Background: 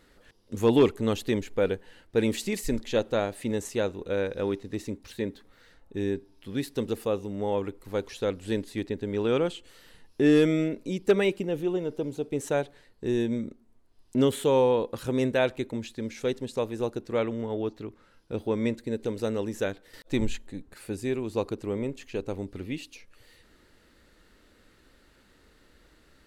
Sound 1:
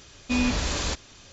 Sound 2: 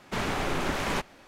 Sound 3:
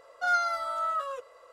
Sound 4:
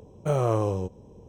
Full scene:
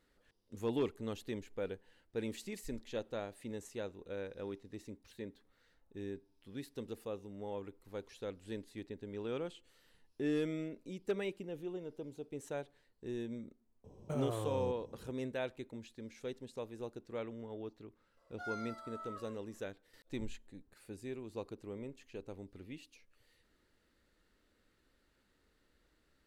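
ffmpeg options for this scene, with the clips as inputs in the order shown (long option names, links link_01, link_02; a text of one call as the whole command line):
ffmpeg -i bed.wav -i cue0.wav -i cue1.wav -i cue2.wav -i cue3.wav -filter_complex "[0:a]volume=-14.5dB[link_01];[4:a]acompressor=threshold=-27dB:ratio=6:attack=3.2:release=140:knee=1:detection=peak,atrim=end=1.28,asetpts=PTS-STARTPTS,volume=-7.5dB,afade=type=in:duration=0.004:curve=hsin,afade=type=out:start_time=1.276:duration=0.004:curve=hsin,adelay=13840[link_02];[3:a]atrim=end=1.52,asetpts=PTS-STARTPTS,volume=-18dB,afade=type=in:duration=0.004:curve=hsin,afade=type=out:start_time=1.516:duration=0.004:curve=hsin,adelay=18170[link_03];[link_01][link_02][link_03]amix=inputs=3:normalize=0" out.wav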